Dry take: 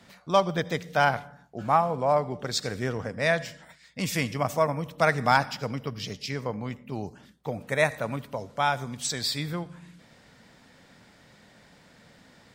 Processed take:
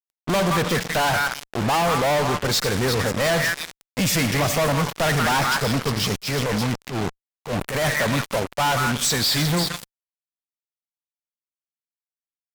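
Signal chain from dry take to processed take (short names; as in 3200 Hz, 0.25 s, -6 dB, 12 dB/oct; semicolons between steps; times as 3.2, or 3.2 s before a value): delay with a stepping band-pass 0.175 s, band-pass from 1500 Hz, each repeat 1.4 oct, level -6 dB; fuzz box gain 44 dB, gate -39 dBFS; 6.17–7.9 transient shaper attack -11 dB, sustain +5 dB; gain -5 dB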